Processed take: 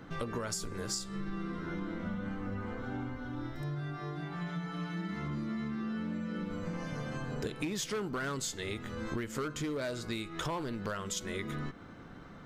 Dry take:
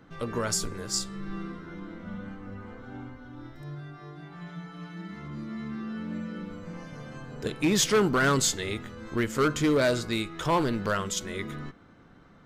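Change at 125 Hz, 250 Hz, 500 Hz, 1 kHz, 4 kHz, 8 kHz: −4.0, −5.5, −9.5, −8.5, −9.0, −9.5 decibels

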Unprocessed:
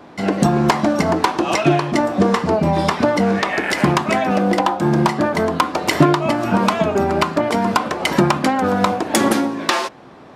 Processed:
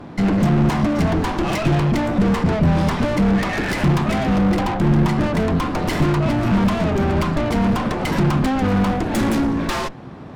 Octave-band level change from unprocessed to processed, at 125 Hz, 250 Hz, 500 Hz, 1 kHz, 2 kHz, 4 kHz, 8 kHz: +4.0, +0.5, −5.0, −6.0, −4.0, −5.5, −7.5 decibels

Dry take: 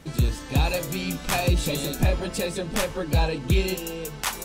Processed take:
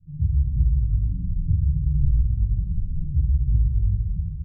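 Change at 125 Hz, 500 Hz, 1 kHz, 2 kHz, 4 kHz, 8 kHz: +5.0 dB, below −35 dB, below −40 dB, below −40 dB, below −40 dB, below −40 dB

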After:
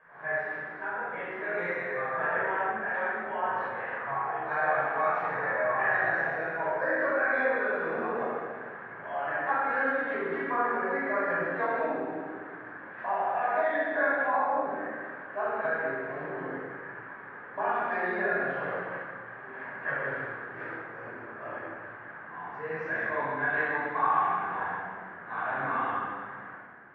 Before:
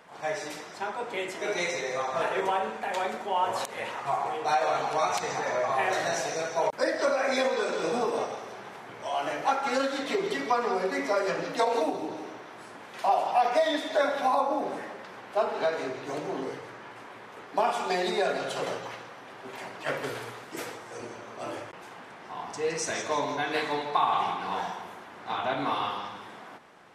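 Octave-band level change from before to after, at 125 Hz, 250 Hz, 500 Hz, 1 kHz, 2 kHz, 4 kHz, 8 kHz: −1.0 dB, −3.0 dB, −3.0 dB, −2.0 dB, +5.5 dB, below −20 dB, below −40 dB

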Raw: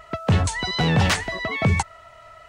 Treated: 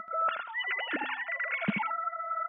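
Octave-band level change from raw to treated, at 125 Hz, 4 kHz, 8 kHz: −25.5 dB, −14.0 dB, below −40 dB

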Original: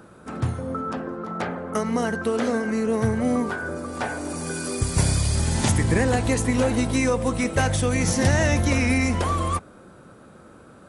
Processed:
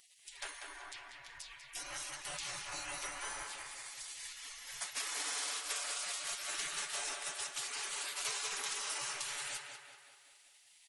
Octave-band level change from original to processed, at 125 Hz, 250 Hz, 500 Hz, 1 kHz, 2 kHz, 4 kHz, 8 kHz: below −40 dB, below −40 dB, −29.0 dB, −17.5 dB, −14.0 dB, −5.5 dB, −7.5 dB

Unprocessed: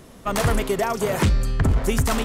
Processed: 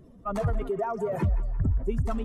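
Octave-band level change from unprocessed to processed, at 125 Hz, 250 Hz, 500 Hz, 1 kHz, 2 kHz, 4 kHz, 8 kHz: −6.0 dB, −7.5 dB, −6.0 dB, −7.5 dB, −17.0 dB, below −20 dB, below −20 dB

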